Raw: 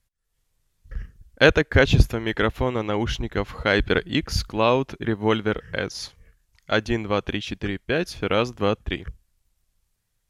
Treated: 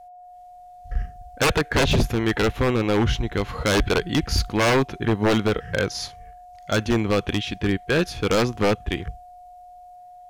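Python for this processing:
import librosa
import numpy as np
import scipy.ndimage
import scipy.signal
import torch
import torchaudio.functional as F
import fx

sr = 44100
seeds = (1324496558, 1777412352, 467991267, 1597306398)

y = x + 10.0 ** (-50.0 / 20.0) * np.sin(2.0 * np.pi * 720.0 * np.arange(len(x)) / sr)
y = fx.hpss(y, sr, part='harmonic', gain_db=8)
y = 10.0 ** (-12.5 / 20.0) * (np.abs((y / 10.0 ** (-12.5 / 20.0) + 3.0) % 4.0 - 2.0) - 1.0)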